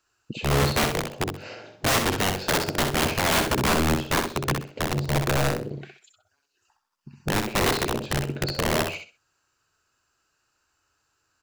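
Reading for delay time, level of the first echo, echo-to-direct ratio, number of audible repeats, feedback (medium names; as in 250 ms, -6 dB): 64 ms, -6.0 dB, -5.5 dB, 3, 24%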